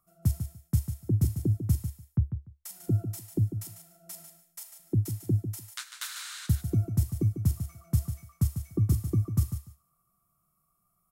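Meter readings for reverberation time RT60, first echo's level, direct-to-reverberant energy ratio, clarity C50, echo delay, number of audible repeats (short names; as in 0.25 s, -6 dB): none, -9.0 dB, none, none, 0.147 s, 2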